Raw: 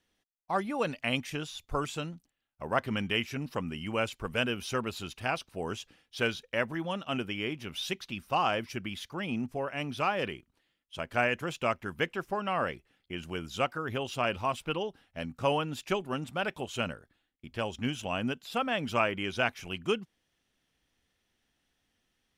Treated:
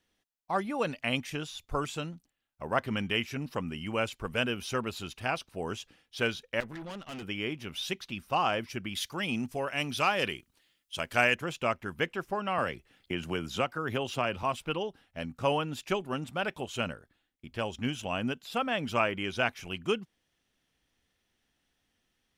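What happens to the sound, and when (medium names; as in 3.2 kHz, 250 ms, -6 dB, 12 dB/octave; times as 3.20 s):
6.60–7.23 s: valve stage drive 38 dB, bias 0.6
8.95–11.35 s: treble shelf 2.6 kHz +11.5 dB
12.58–14.43 s: three bands compressed up and down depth 70%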